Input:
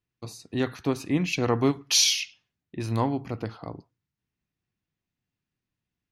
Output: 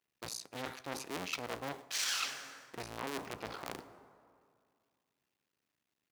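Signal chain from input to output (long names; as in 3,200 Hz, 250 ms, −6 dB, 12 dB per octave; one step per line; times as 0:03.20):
sub-harmonics by changed cycles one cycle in 2, muted
high-pass filter 480 Hz 6 dB per octave
dense smooth reverb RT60 2.2 s, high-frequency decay 0.55×, DRR 17.5 dB
reversed playback
downward compressor 6 to 1, threshold −40 dBFS, peak gain reduction 19.5 dB
reversed playback
saturating transformer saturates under 2,200 Hz
level +7 dB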